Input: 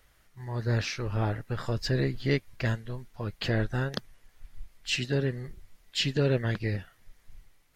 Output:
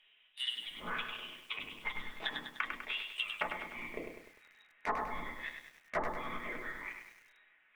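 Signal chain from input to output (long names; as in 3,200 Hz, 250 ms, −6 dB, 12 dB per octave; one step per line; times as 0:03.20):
band-pass filter sweep 800 Hz → 1,700 Hz, 0:00.65–0:04.36
voice inversion scrambler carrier 3,800 Hz
rectangular room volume 230 cubic metres, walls furnished, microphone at 1.4 metres
leveller curve on the samples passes 2
parametric band 88 Hz −12 dB 2.4 octaves
treble cut that deepens with the level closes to 490 Hz, closed at −32.5 dBFS
dynamic equaliser 1,300 Hz, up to +4 dB, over −59 dBFS, Q 1.5
downward compressor 3 to 1, threshold −47 dBFS, peak gain reduction 11 dB
feedback echo at a low word length 100 ms, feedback 55%, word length 12 bits, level −6 dB
level +12.5 dB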